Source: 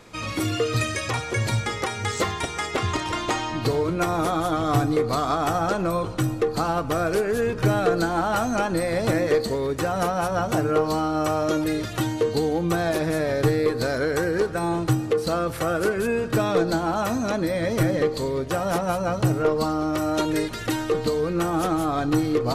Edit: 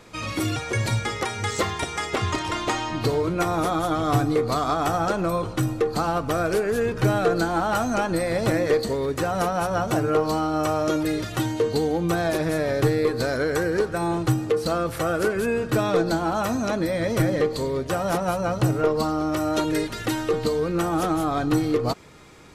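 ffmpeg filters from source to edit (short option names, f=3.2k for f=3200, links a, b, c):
-filter_complex "[0:a]asplit=2[a][b];[a]atrim=end=0.562[c];[b]atrim=start=1.168[d];[c][d]acrossfade=d=0.004:c1=hsin:c2=hsin"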